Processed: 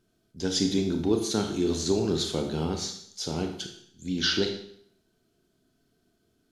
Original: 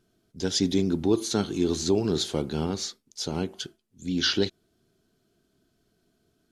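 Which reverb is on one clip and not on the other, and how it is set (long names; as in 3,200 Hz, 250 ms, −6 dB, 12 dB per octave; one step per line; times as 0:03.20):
four-comb reverb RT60 0.65 s, combs from 25 ms, DRR 4 dB
level −2 dB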